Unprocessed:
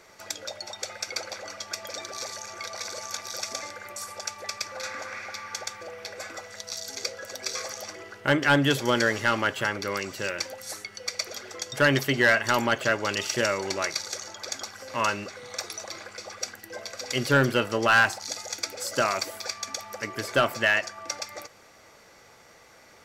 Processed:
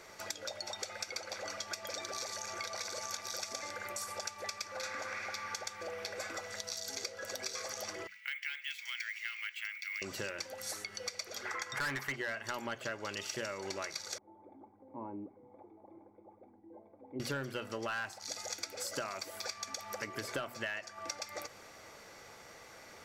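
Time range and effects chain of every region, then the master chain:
8.07–10.02 s: ladder high-pass 2.1 kHz, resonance 80% + careless resampling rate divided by 2×, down filtered, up hold
11.45–12.16 s: high-order bell 1.4 kHz +13.5 dB + overload inside the chain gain 14.5 dB
14.18–17.20 s: cascade formant filter u + peaking EQ 1 kHz +3.5 dB 0.36 oct
whole clip: hum notches 60/120/180/240 Hz; compression 6:1, threshold -37 dBFS

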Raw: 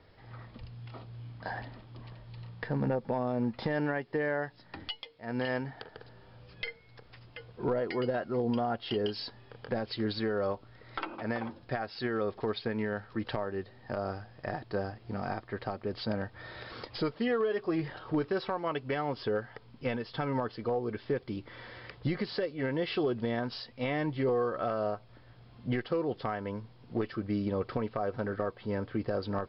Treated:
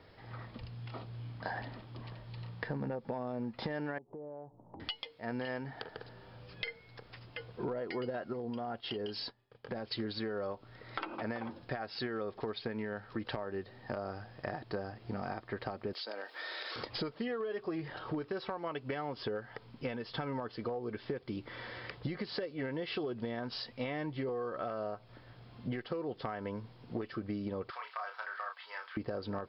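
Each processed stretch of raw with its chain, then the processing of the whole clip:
3.98–4.80 s: steep low-pass 980 Hz 48 dB/octave + compression 4:1, threshold -48 dBFS
8.33–9.92 s: expander -41 dBFS + compression 2:1, threshold -40 dBFS
15.93–16.76 s: high-pass 360 Hz 24 dB/octave + treble shelf 2.3 kHz +12 dB + compression, threshold -40 dBFS
27.70–28.97 s: high-pass 990 Hz 24 dB/octave + doubling 33 ms -5.5 dB
whole clip: bass shelf 68 Hz -8 dB; compression, threshold -37 dBFS; trim +2.5 dB

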